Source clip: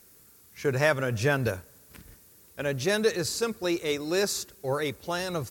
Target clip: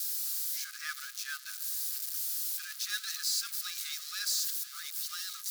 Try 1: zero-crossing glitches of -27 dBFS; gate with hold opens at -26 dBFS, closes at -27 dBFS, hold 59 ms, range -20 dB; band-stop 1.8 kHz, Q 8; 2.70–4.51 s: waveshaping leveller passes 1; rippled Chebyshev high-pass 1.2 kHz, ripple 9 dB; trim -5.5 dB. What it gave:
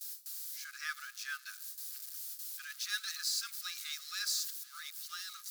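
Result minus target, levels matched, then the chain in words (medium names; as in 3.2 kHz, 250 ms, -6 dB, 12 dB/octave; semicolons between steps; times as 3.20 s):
zero-crossing glitches: distortion -9 dB
zero-crossing glitches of -18 dBFS; gate with hold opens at -26 dBFS, closes at -27 dBFS, hold 59 ms, range -20 dB; band-stop 1.8 kHz, Q 8; 2.70–4.51 s: waveshaping leveller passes 1; rippled Chebyshev high-pass 1.2 kHz, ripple 9 dB; trim -5.5 dB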